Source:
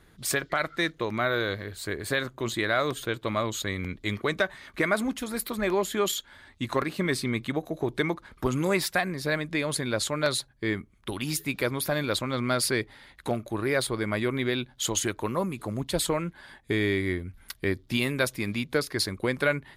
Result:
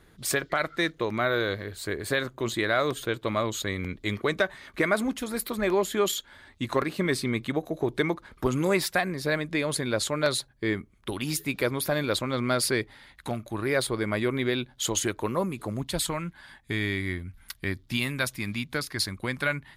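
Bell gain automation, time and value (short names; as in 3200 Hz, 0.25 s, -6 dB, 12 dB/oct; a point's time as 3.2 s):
bell 440 Hz 1.1 oct
12.69 s +2 dB
13.37 s -8 dB
13.78 s +1.5 dB
15.65 s +1.5 dB
16.09 s -9 dB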